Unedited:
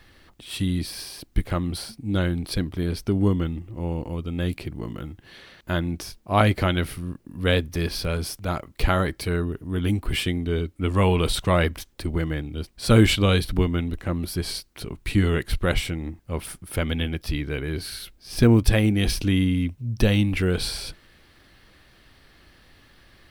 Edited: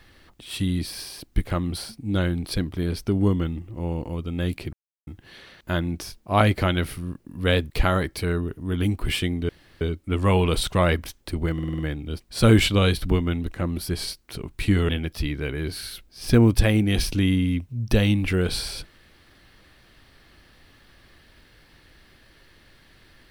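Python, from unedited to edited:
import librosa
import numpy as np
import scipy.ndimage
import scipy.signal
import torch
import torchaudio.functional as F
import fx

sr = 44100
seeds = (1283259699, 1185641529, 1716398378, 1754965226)

y = fx.edit(x, sr, fx.silence(start_s=4.73, length_s=0.34),
    fx.cut(start_s=7.7, length_s=1.04),
    fx.insert_room_tone(at_s=10.53, length_s=0.32),
    fx.stutter(start_s=12.26, slice_s=0.05, count=6),
    fx.cut(start_s=15.36, length_s=1.62), tone=tone)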